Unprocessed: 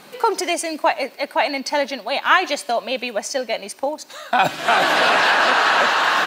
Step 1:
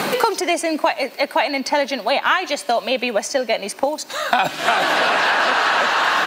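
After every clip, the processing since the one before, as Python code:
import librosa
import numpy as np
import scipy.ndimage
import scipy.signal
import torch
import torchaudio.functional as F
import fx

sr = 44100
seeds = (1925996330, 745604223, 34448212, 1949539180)

y = fx.band_squash(x, sr, depth_pct=100)
y = y * librosa.db_to_amplitude(-1.0)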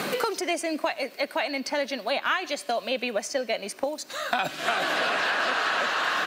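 y = fx.peak_eq(x, sr, hz=880.0, db=-7.0, octaves=0.32)
y = y * librosa.db_to_amplitude(-7.5)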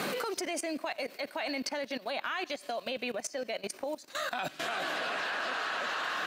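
y = fx.level_steps(x, sr, step_db=17)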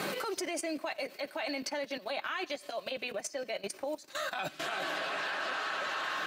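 y = fx.notch_comb(x, sr, f0_hz=240.0)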